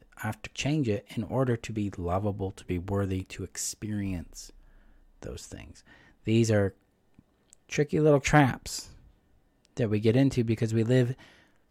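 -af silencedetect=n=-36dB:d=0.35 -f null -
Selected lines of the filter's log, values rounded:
silence_start: 4.45
silence_end: 5.23 | silence_duration: 0.78
silence_start: 5.64
silence_end: 6.27 | silence_duration: 0.63
silence_start: 6.69
silence_end: 7.53 | silence_duration: 0.84
silence_start: 8.83
silence_end: 9.77 | silence_duration: 0.94
silence_start: 11.13
silence_end: 11.71 | silence_duration: 0.58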